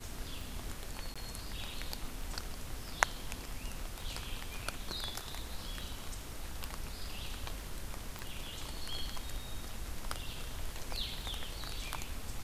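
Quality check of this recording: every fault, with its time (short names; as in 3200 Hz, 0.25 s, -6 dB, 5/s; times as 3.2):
tick
1.14–1.16 gap 16 ms
8.19 pop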